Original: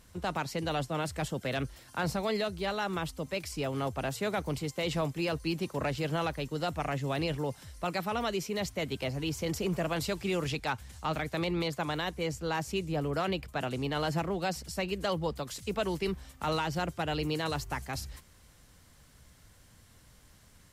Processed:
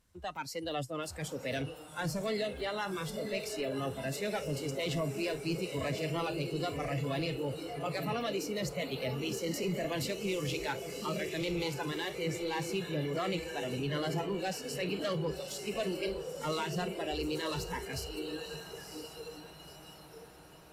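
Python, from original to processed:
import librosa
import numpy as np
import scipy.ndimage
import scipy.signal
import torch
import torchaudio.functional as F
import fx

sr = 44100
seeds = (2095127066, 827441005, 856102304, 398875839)

y = fx.echo_diffused(x, sr, ms=991, feedback_pct=70, wet_db=-4.5)
y = 10.0 ** (-26.5 / 20.0) * np.tanh(y / 10.0 ** (-26.5 / 20.0))
y = fx.noise_reduce_blind(y, sr, reduce_db=14)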